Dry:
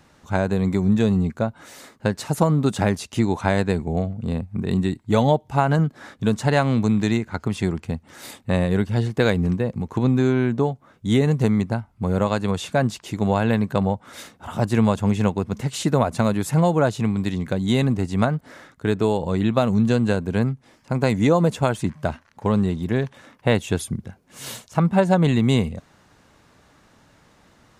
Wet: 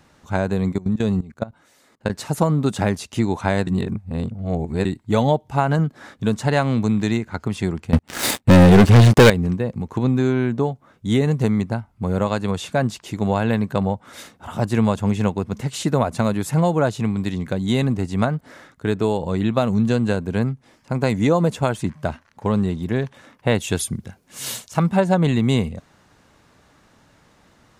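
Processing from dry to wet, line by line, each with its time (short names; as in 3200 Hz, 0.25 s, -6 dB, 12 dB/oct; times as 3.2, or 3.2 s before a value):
0.72–2.1 level quantiser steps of 19 dB
3.67–4.85 reverse
7.93–9.3 sample leveller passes 5
23.6–24.97 high shelf 2500 Hz +7.5 dB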